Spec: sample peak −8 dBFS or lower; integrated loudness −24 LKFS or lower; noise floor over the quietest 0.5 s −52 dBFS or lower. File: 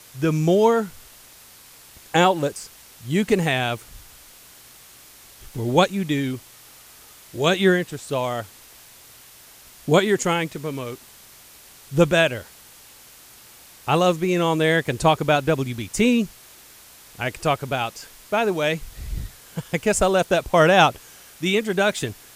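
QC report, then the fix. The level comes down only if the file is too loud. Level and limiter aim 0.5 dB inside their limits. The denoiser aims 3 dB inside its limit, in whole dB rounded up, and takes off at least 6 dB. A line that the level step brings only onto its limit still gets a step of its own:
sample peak −3.0 dBFS: out of spec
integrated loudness −21.0 LKFS: out of spec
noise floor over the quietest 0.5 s −47 dBFS: out of spec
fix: broadband denoise 6 dB, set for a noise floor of −47 dBFS
level −3.5 dB
brickwall limiter −8.5 dBFS

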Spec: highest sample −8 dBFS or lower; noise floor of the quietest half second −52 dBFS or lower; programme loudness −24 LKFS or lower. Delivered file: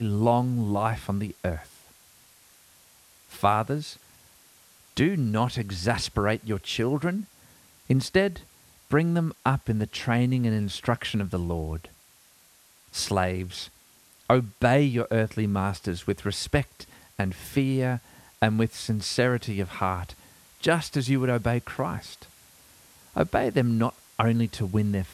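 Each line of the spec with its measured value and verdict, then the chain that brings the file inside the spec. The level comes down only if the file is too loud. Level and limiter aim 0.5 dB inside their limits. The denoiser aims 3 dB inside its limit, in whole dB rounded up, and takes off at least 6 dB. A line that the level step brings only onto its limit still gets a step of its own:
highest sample −6.0 dBFS: out of spec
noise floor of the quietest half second −58 dBFS: in spec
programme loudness −26.5 LKFS: in spec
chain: brickwall limiter −8.5 dBFS

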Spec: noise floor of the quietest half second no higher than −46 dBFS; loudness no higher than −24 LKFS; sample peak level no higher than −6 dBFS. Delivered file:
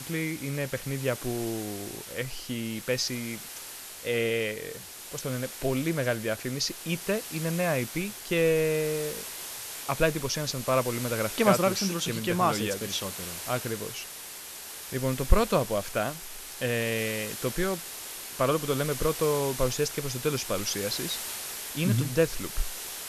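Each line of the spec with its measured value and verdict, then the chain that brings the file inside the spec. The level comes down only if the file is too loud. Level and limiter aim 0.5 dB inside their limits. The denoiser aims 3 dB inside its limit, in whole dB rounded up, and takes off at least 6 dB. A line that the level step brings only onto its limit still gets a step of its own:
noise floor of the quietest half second −42 dBFS: out of spec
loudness −29.5 LKFS: in spec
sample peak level −4.0 dBFS: out of spec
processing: broadband denoise 7 dB, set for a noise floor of −42 dBFS
brickwall limiter −6.5 dBFS

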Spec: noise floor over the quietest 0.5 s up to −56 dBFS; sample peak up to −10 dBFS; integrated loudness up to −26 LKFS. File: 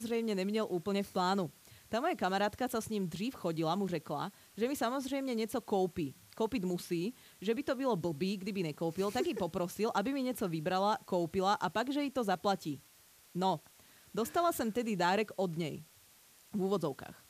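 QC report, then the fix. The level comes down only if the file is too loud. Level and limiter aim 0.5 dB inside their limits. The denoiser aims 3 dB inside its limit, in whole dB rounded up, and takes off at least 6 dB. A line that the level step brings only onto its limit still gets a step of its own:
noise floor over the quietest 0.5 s −62 dBFS: in spec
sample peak −18.0 dBFS: in spec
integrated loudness −35.0 LKFS: in spec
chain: no processing needed

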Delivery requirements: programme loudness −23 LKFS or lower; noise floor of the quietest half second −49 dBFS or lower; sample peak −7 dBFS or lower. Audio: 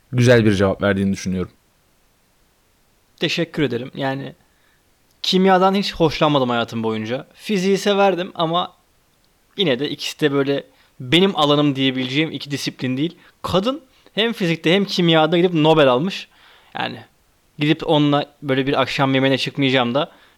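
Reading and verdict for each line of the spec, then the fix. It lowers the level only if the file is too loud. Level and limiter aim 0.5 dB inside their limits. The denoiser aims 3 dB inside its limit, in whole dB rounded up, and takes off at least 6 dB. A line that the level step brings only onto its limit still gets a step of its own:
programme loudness −18.5 LKFS: out of spec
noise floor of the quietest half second −59 dBFS: in spec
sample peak −4.5 dBFS: out of spec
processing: level −5 dB

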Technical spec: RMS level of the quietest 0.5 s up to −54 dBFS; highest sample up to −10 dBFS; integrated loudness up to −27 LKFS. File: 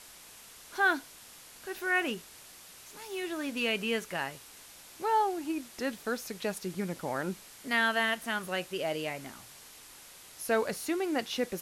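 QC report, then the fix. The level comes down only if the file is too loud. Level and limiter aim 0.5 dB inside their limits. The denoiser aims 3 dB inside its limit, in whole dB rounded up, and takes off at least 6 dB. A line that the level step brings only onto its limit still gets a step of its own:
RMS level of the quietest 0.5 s −52 dBFS: out of spec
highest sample −15.5 dBFS: in spec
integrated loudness −32.0 LKFS: in spec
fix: broadband denoise 6 dB, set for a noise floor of −52 dBFS

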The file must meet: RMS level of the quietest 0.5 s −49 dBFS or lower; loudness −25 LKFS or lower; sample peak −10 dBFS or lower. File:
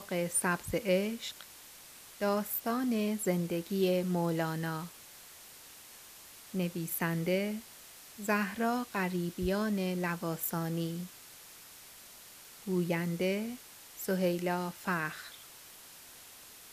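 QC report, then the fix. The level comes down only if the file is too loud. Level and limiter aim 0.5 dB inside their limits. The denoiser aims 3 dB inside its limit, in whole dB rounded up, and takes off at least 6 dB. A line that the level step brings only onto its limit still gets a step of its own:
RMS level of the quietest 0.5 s −53 dBFS: in spec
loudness −33.0 LKFS: in spec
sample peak −15.5 dBFS: in spec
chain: no processing needed

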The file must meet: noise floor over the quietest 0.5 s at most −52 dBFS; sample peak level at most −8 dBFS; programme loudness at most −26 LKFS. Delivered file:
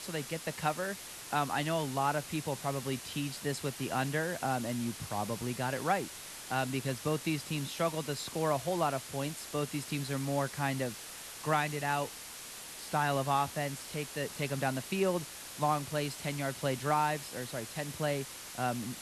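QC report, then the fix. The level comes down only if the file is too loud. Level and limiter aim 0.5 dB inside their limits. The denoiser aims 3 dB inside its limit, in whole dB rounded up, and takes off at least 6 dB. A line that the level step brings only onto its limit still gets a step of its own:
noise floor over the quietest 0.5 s −46 dBFS: out of spec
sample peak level −16.0 dBFS: in spec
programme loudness −34.5 LKFS: in spec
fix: broadband denoise 9 dB, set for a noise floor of −46 dBFS

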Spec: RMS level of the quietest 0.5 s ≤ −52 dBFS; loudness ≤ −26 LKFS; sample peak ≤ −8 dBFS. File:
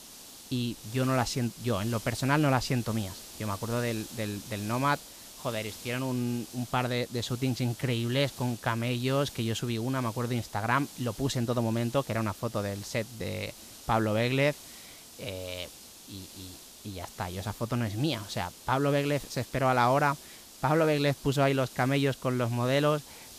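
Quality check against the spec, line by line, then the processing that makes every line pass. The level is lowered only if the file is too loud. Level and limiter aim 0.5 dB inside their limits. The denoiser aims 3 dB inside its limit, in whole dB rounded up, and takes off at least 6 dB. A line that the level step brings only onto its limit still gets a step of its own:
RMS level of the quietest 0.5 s −48 dBFS: out of spec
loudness −30.0 LKFS: in spec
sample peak −11.5 dBFS: in spec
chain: broadband denoise 7 dB, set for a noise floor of −48 dBFS

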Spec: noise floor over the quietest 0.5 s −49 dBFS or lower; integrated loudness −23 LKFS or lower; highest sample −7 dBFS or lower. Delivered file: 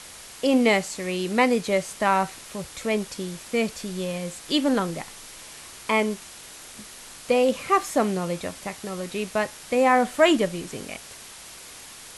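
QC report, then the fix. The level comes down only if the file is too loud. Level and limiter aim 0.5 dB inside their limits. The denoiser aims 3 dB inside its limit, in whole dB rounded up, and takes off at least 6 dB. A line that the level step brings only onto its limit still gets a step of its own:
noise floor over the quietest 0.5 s −43 dBFS: out of spec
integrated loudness −24.5 LKFS: in spec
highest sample −6.0 dBFS: out of spec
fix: broadband denoise 9 dB, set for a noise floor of −43 dBFS
brickwall limiter −7.5 dBFS

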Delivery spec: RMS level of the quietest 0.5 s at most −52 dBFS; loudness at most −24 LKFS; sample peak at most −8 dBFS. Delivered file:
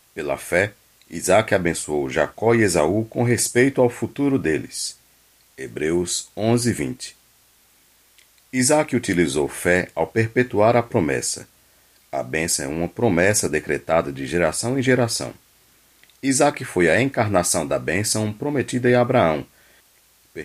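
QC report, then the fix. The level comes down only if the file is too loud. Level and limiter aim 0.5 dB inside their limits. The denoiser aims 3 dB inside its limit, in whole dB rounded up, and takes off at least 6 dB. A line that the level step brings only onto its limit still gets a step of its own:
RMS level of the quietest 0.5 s −57 dBFS: in spec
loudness −20.5 LKFS: out of spec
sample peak −2.0 dBFS: out of spec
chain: level −4 dB
brickwall limiter −8.5 dBFS

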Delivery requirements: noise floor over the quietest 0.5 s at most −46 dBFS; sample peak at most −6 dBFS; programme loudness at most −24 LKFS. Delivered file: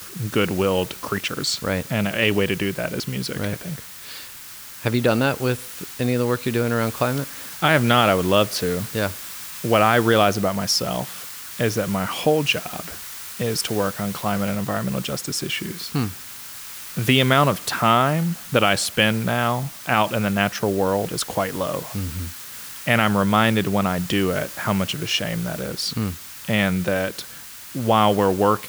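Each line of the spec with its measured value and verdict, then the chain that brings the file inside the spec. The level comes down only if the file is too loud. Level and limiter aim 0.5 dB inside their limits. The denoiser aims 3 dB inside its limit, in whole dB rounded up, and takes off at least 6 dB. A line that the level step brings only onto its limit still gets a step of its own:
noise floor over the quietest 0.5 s −39 dBFS: out of spec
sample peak −3.0 dBFS: out of spec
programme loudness −21.5 LKFS: out of spec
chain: broadband denoise 7 dB, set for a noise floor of −39 dBFS
level −3 dB
brickwall limiter −6.5 dBFS

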